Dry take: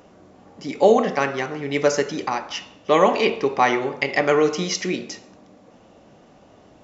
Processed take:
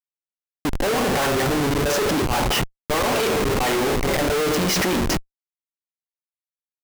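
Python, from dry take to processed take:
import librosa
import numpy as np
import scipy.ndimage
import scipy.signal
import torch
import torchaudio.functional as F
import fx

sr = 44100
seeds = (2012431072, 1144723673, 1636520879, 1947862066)

y = fx.noise_reduce_blind(x, sr, reduce_db=7)
y = fx.auto_swell(y, sr, attack_ms=114.0)
y = fx.schmitt(y, sr, flips_db=-34.0)
y = F.gain(torch.from_numpy(y), 5.0).numpy()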